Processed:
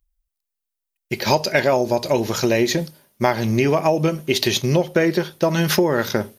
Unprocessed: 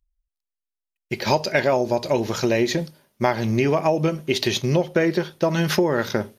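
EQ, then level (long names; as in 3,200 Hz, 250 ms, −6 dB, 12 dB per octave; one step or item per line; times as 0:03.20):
high-shelf EQ 8,600 Hz +10 dB
+2.0 dB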